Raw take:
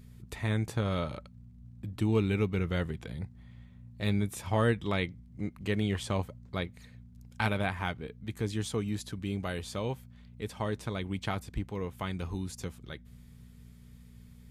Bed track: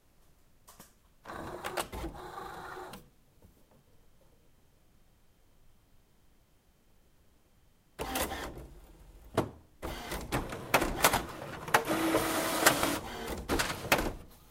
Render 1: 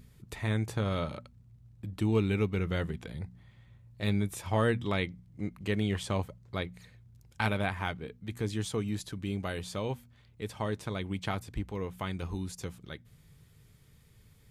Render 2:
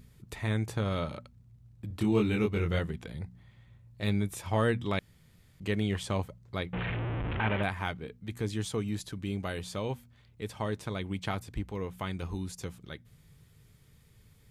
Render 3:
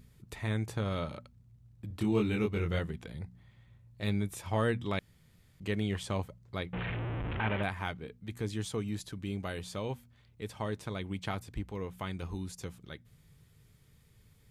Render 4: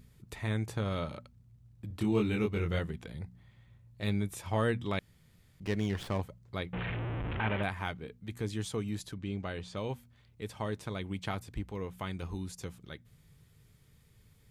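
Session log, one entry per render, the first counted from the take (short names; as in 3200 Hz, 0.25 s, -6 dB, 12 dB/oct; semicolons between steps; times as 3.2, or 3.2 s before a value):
de-hum 60 Hz, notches 4
1.88–2.79 doubler 24 ms -2.5 dB; 4.99–5.6 room tone; 6.73–7.63 delta modulation 16 kbps, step -26.5 dBFS
gain -2.5 dB
5.63–6.21 running maximum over 5 samples; 9.14–9.77 air absorption 85 m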